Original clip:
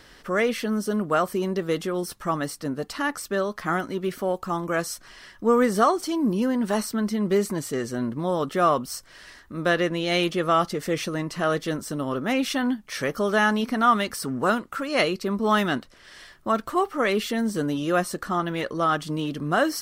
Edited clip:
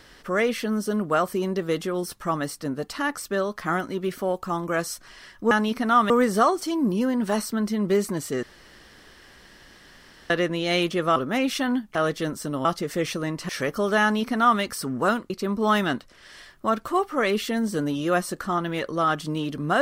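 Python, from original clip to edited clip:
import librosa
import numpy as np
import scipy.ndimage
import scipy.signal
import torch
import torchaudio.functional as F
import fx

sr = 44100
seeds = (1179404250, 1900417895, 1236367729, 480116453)

y = fx.edit(x, sr, fx.room_tone_fill(start_s=7.84, length_s=1.87),
    fx.swap(start_s=10.57, length_s=0.84, other_s=12.11, other_length_s=0.79),
    fx.duplicate(start_s=13.43, length_s=0.59, to_s=5.51),
    fx.cut(start_s=14.71, length_s=0.41), tone=tone)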